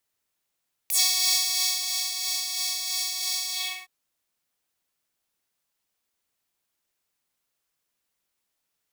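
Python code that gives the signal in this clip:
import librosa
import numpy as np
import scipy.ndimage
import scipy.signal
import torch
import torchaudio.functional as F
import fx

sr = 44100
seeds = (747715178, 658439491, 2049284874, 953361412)

y = fx.sub_patch_tremolo(sr, seeds[0], note=78, wave='triangle', wave2='saw', interval_st=7, detune_cents=16, level2_db=-9.0, sub_db=-9.0, noise_db=-19.0, kind='highpass', cutoff_hz=1900.0, q=2.0, env_oct=3.0, env_decay_s=0.09, env_sustain_pct=45, attack_ms=3.3, decay_s=1.08, sustain_db=-8.0, release_s=0.36, note_s=2.61, lfo_hz=3.0, tremolo_db=4.0)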